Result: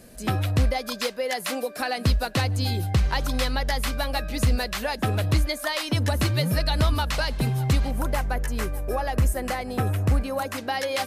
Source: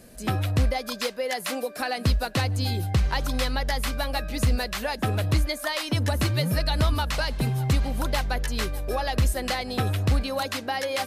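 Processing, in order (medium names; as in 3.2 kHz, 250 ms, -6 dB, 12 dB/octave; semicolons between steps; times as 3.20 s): 7.91–10.58 s: peaking EQ 3.9 kHz -11.5 dB 1.1 oct; trim +1 dB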